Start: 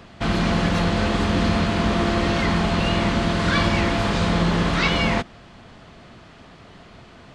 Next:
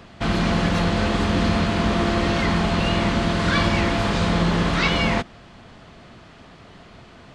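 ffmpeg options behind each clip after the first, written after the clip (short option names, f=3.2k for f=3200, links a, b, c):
-af anull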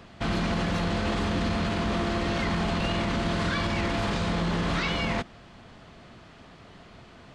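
-af "alimiter=limit=-15dB:level=0:latency=1:release=16,volume=-4dB"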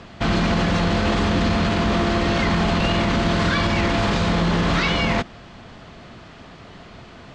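-af "lowpass=f=8k:w=0.5412,lowpass=f=8k:w=1.3066,volume=7.5dB"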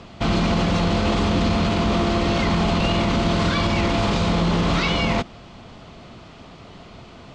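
-af "equalizer=f=1.7k:w=3.5:g=-7.5"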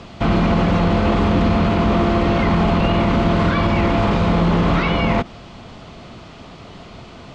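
-filter_complex "[0:a]acrossover=split=2600[a][b];[b]acompressor=threshold=-45dB:ratio=4:attack=1:release=60[c];[a][c]amix=inputs=2:normalize=0,volume=4dB"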